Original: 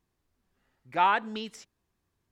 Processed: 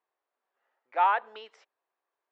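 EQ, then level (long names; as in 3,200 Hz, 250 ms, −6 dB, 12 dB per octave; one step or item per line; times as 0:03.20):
high-pass filter 540 Hz 24 dB per octave
low-pass filter 1,200 Hz 6 dB per octave
high-frequency loss of the air 120 metres
+3.0 dB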